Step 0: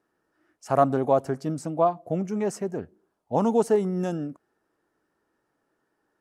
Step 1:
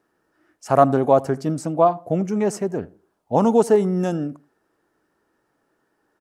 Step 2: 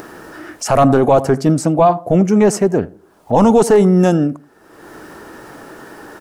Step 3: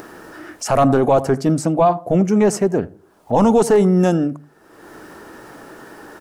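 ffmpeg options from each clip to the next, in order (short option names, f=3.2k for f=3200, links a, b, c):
-filter_complex "[0:a]asplit=2[a][b];[b]adelay=81,lowpass=f=1.6k:p=1,volume=-20.5dB,asplit=2[c][d];[d]adelay=81,lowpass=f=1.6k:p=1,volume=0.27[e];[a][c][e]amix=inputs=3:normalize=0,volume=5.5dB"
-af "apsyclip=15.5dB,acompressor=mode=upward:threshold=-12dB:ratio=2.5,volume=-5dB"
-af "bandreject=f=50:t=h:w=6,bandreject=f=100:t=h:w=6,bandreject=f=150:t=h:w=6,volume=-3dB"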